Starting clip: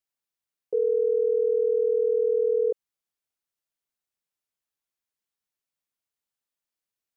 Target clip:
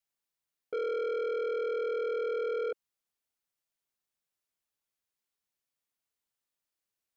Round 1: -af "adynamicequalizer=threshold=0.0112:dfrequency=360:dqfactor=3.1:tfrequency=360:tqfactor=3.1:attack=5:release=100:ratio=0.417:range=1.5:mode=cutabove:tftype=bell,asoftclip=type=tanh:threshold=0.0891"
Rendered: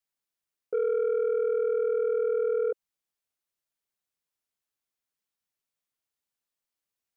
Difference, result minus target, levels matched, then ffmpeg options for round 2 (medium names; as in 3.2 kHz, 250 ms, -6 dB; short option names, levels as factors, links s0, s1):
saturation: distortion -9 dB
-af "adynamicequalizer=threshold=0.0112:dfrequency=360:dqfactor=3.1:tfrequency=360:tqfactor=3.1:attack=5:release=100:ratio=0.417:range=1.5:mode=cutabove:tftype=bell,asoftclip=type=tanh:threshold=0.0316"